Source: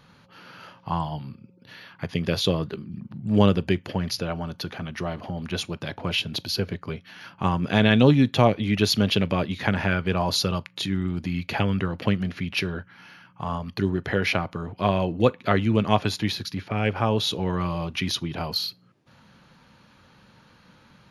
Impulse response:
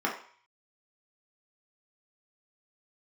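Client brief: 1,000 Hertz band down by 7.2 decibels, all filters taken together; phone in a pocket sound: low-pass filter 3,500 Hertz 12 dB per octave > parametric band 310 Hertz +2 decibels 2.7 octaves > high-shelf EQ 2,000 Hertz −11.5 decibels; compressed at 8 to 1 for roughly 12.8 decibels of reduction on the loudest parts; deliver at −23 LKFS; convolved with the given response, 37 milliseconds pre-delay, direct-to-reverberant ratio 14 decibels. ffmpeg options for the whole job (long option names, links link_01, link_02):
-filter_complex "[0:a]equalizer=frequency=1000:width_type=o:gain=-8.5,acompressor=threshold=-26dB:ratio=8,asplit=2[link_01][link_02];[1:a]atrim=start_sample=2205,adelay=37[link_03];[link_02][link_03]afir=irnorm=-1:irlink=0,volume=-24dB[link_04];[link_01][link_04]amix=inputs=2:normalize=0,lowpass=3500,equalizer=frequency=310:width_type=o:width=2.7:gain=2,highshelf=frequency=2000:gain=-11.5,volume=9dB"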